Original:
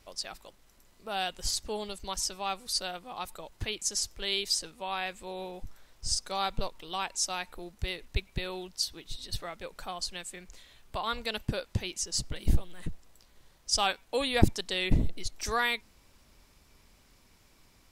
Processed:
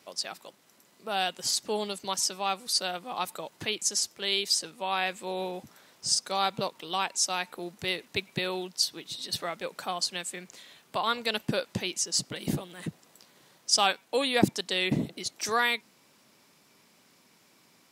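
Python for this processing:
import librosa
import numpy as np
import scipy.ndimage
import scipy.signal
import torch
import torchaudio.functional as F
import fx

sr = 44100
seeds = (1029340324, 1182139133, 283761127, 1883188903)

p1 = scipy.signal.sosfilt(scipy.signal.butter(4, 150.0, 'highpass', fs=sr, output='sos'), x)
p2 = fx.rider(p1, sr, range_db=4, speed_s=0.5)
p3 = p1 + (p2 * librosa.db_to_amplitude(-1.0))
y = p3 * librosa.db_to_amplitude(-1.5)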